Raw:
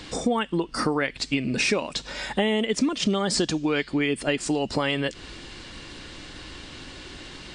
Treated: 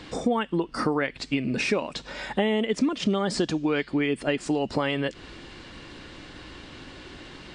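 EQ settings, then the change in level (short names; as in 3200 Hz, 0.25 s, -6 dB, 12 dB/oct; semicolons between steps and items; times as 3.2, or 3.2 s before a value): low shelf 63 Hz -6 dB; high shelf 3800 Hz -10.5 dB; 0.0 dB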